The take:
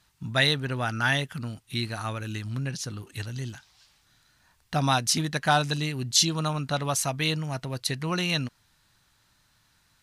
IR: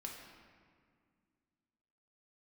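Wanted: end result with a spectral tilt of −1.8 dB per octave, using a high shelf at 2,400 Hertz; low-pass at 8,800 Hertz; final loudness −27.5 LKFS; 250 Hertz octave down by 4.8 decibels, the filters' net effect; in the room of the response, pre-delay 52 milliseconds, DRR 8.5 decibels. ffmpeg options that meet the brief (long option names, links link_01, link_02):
-filter_complex "[0:a]lowpass=8800,equalizer=frequency=250:width_type=o:gain=-8.5,highshelf=frequency=2400:gain=7.5,asplit=2[link_01][link_02];[1:a]atrim=start_sample=2205,adelay=52[link_03];[link_02][link_03]afir=irnorm=-1:irlink=0,volume=-6dB[link_04];[link_01][link_04]amix=inputs=2:normalize=0,volume=-4.5dB"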